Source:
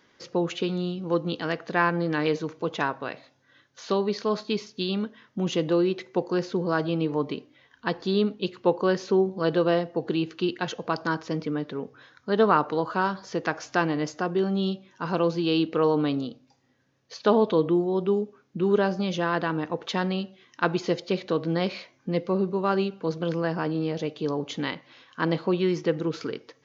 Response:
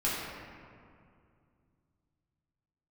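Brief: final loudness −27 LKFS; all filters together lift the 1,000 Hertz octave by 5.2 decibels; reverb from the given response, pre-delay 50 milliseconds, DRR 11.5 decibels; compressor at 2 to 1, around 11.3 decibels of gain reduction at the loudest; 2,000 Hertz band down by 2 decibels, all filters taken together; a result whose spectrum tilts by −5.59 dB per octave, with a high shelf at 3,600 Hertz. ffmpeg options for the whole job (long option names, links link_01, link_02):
-filter_complex "[0:a]equalizer=frequency=1000:width_type=o:gain=8,equalizer=frequency=2000:width_type=o:gain=-5.5,highshelf=frequency=3600:gain=-6,acompressor=threshold=-34dB:ratio=2,asplit=2[link_01][link_02];[1:a]atrim=start_sample=2205,adelay=50[link_03];[link_02][link_03]afir=irnorm=-1:irlink=0,volume=-20.5dB[link_04];[link_01][link_04]amix=inputs=2:normalize=0,volume=6.5dB"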